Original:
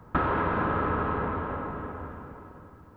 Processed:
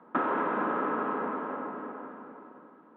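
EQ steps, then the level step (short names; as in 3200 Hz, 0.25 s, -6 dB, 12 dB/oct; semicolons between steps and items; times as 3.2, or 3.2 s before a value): elliptic band-pass 230–3800 Hz, stop band 40 dB; air absorption 320 m; 0.0 dB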